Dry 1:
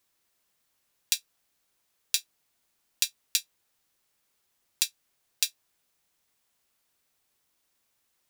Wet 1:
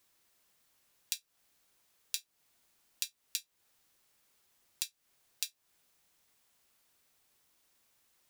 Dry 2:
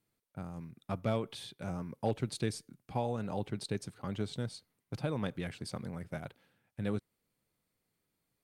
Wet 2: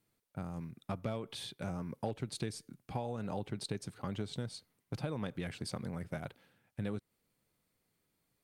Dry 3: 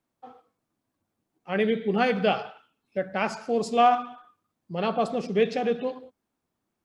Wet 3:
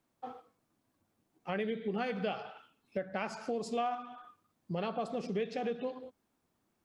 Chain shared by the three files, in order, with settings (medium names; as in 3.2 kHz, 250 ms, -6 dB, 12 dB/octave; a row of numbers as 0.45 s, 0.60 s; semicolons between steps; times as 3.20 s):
compression 4:1, threshold -37 dBFS; trim +2.5 dB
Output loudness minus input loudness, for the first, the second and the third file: -10.0 LU, -3.0 LU, -11.0 LU